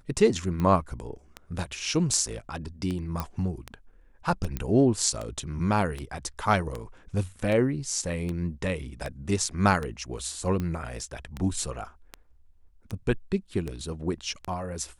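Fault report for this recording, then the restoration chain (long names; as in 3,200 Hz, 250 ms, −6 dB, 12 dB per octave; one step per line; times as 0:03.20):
scratch tick 78 rpm −19 dBFS
0:03.20: click −15 dBFS
0:04.57: click −16 dBFS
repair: click removal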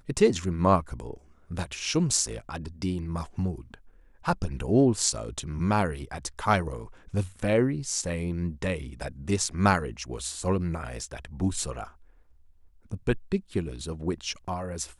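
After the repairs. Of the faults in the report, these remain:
none of them is left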